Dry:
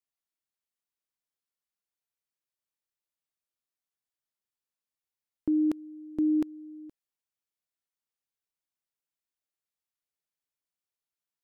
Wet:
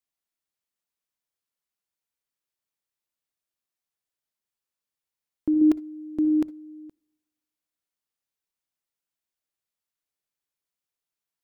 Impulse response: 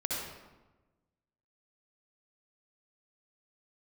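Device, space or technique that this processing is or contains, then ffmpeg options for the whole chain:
keyed gated reverb: -filter_complex "[0:a]asplit=3[link_01][link_02][link_03];[1:a]atrim=start_sample=2205[link_04];[link_02][link_04]afir=irnorm=-1:irlink=0[link_05];[link_03]apad=whole_len=504303[link_06];[link_05][link_06]sidechaingate=range=-24dB:threshold=-32dB:ratio=16:detection=peak,volume=-12dB[link_07];[link_01][link_07]amix=inputs=2:normalize=0,asettb=1/sr,asplit=3[link_08][link_09][link_10];[link_08]atrim=end=5.614[link_11];[link_09]atrim=start=5.61:end=6.18,asetpts=PTS-STARTPTS,afade=type=in:duration=0.004:curve=qsin,afade=type=out:start_time=0.566:duration=0.004:curve=qsin,aecho=1:1:2.9:0.75,atrim=end_sample=25137[link_12];[link_10]atrim=start=6.176[link_13];[link_11][link_12]acrossfade=duration=0.004:curve1=hsin:curve2=qsin[link_14];[link_14][link_13]acrossfade=duration=0.004:curve1=qsin:curve2=hsin,volume=2dB"

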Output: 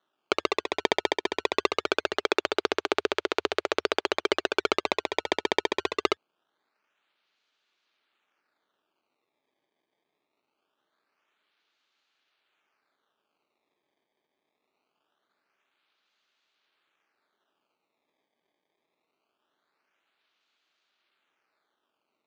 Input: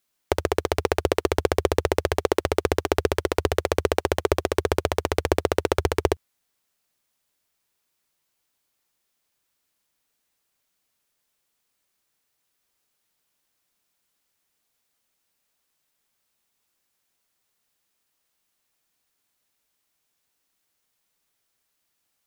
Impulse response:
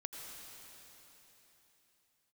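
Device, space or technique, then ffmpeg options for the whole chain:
circuit-bent sampling toy: -af "acrusher=samples=18:mix=1:aa=0.000001:lfo=1:lforange=28.8:lforate=0.23,highpass=490,equalizer=frequency=510:width_type=q:width=4:gain=-8,equalizer=frequency=730:width_type=q:width=4:gain=-6,equalizer=frequency=1000:width_type=q:width=4:gain=-6,equalizer=frequency=1900:width_type=q:width=4:gain=-5,equalizer=frequency=5300:width_type=q:width=4:gain=-7,lowpass=frequency=5300:width=0.5412,lowpass=frequency=5300:width=1.3066,volume=3dB"

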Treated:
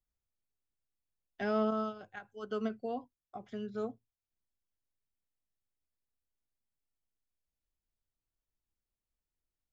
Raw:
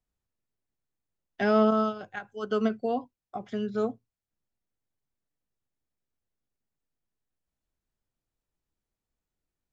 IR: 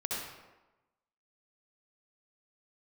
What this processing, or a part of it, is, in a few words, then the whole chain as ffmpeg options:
low shelf boost with a cut just above: -af "lowshelf=frequency=92:gain=7,equalizer=frequency=160:width_type=o:width=0.82:gain=-2.5,volume=-9dB"

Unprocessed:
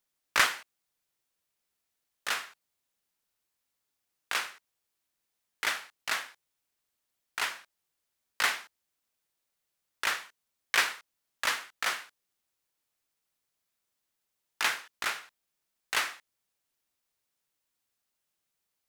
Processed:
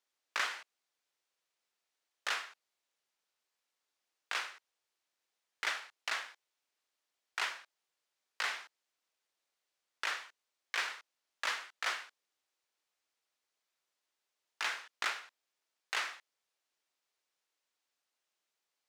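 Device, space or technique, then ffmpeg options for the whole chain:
DJ mixer with the lows and highs turned down: -filter_complex "[0:a]acrossover=split=310 7600:gain=0.141 1 0.224[link_01][link_02][link_03];[link_01][link_02][link_03]amix=inputs=3:normalize=0,alimiter=limit=-21.5dB:level=0:latency=1:release=281"

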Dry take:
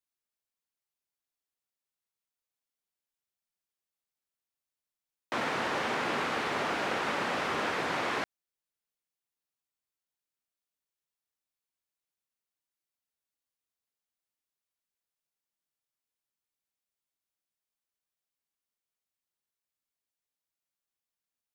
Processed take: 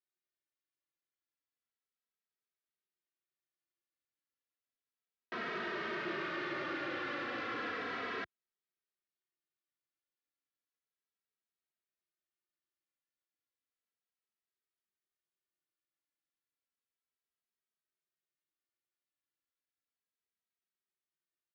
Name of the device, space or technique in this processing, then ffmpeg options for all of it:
barber-pole flanger into a guitar amplifier: -filter_complex "[0:a]asplit=2[link_01][link_02];[link_02]adelay=2.8,afreqshift=-0.33[link_03];[link_01][link_03]amix=inputs=2:normalize=1,asoftclip=type=tanh:threshold=-33.5dB,highpass=89,equalizer=frequency=350:width_type=q:width=4:gain=9,equalizer=frequency=850:width_type=q:width=4:gain=-9,equalizer=frequency=1300:width_type=q:width=4:gain=4,equalizer=frequency=1800:width_type=q:width=4:gain=5,lowpass=frequency=4600:width=0.5412,lowpass=frequency=4600:width=1.3066,volume=-3dB"

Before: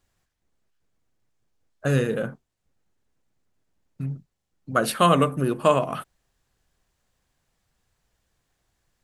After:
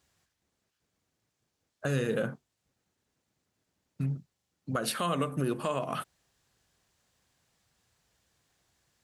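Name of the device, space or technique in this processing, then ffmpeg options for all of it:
broadcast voice chain: -af "highpass=73,deesser=0.35,acompressor=threshold=-26dB:ratio=3,equalizer=frequency=5100:width_type=o:width=2:gain=4,alimiter=limit=-18.5dB:level=0:latency=1:release=129"

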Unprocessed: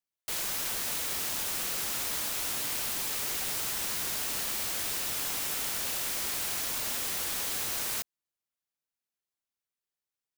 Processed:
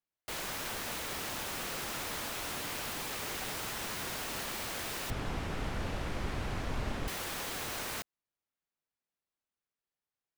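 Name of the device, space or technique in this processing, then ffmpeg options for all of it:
through cloth: -filter_complex "[0:a]highshelf=frequency=3700:gain=-12.5,asettb=1/sr,asplit=3[link_01][link_02][link_03];[link_01]atrim=end=5.104[link_04];[link_02]atrim=start=5.1:end=7.08,asetpts=PTS-STARTPTS,afade=type=in:duration=0.004:curve=qsin,afade=type=out:start_time=1.976:duration=0.004:curve=qsin,aemphasis=mode=reproduction:type=riaa[link_05];[link_03]atrim=start=7.076[link_06];[link_04][link_05]acrossfade=duration=0.004:curve1=hsin:curve2=qsin[link_07];[link_07][link_06]acrossfade=duration=0.004:curve1=qsin:curve2=hsin,volume=2dB"

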